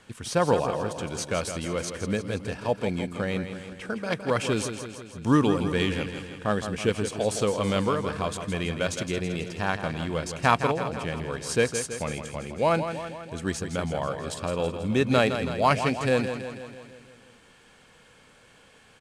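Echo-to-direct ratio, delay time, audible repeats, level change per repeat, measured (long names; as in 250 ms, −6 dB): −7.0 dB, 163 ms, 6, −4.5 dB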